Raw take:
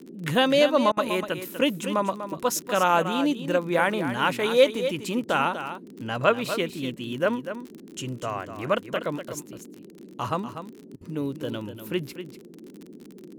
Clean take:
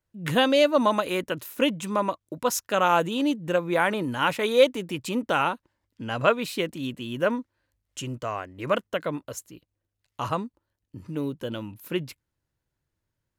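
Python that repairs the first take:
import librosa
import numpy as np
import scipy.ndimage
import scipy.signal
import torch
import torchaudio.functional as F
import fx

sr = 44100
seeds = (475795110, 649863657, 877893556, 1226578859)

y = fx.fix_declick_ar(x, sr, threshold=6.5)
y = fx.fix_interpolate(y, sr, at_s=(0.92, 10.96), length_ms=49.0)
y = fx.noise_reduce(y, sr, print_start_s=9.67, print_end_s=10.17, reduce_db=30.0)
y = fx.fix_echo_inverse(y, sr, delay_ms=244, level_db=-10.0)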